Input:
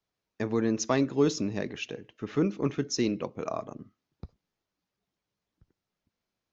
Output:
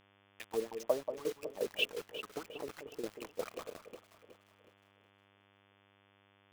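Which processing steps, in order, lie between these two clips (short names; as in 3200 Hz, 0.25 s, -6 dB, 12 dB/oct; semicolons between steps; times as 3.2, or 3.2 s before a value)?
compressor 12:1, threshold -29 dBFS, peak gain reduction 11.5 dB; wah 2.9 Hz 450–3200 Hz, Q 5.9; bit-crush 9-bit; echo with dull and thin repeats by turns 0.184 s, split 1200 Hz, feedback 65%, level -8 dB; tremolo saw down 5.6 Hz, depth 80%; buzz 100 Hz, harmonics 35, -79 dBFS -2 dB/oct; gain +11 dB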